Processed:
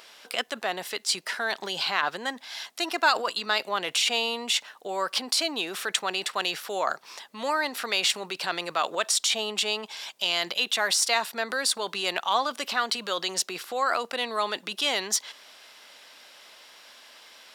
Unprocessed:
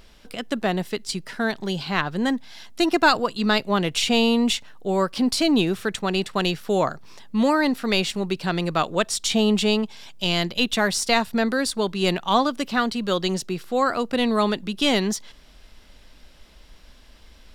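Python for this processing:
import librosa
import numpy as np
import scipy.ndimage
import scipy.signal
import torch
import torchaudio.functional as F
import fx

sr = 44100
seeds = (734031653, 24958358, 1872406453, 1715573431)

p1 = fx.over_compress(x, sr, threshold_db=-28.0, ratio=-0.5)
p2 = x + F.gain(torch.from_numpy(p1), 0.0).numpy()
p3 = scipy.signal.sosfilt(scipy.signal.butter(2, 680.0, 'highpass', fs=sr, output='sos'), p2)
y = F.gain(torch.from_numpy(p3), -3.5).numpy()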